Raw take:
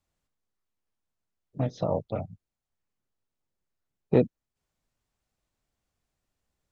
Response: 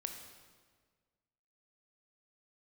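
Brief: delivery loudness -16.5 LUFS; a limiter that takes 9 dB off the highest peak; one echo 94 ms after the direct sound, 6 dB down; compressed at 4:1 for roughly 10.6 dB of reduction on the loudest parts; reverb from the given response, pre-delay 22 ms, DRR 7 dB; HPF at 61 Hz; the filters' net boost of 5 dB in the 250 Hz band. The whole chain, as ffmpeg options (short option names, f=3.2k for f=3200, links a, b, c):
-filter_complex "[0:a]highpass=61,equalizer=f=250:t=o:g=6,acompressor=threshold=-24dB:ratio=4,alimiter=limit=-22dB:level=0:latency=1,aecho=1:1:94:0.501,asplit=2[a][b];[1:a]atrim=start_sample=2205,adelay=22[c];[b][c]afir=irnorm=-1:irlink=0,volume=-5.5dB[d];[a][d]amix=inputs=2:normalize=0,volume=19dB"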